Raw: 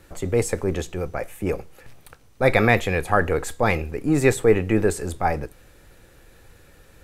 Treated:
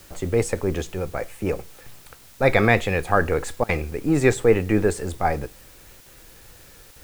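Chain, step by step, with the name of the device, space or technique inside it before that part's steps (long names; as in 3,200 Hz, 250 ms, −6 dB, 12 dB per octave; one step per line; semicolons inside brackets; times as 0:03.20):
worn cassette (low-pass filter 9,000 Hz; tape wow and flutter; tape dropouts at 0:03.64/0:06.01/0:06.91, 49 ms −24 dB; white noise bed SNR 27 dB)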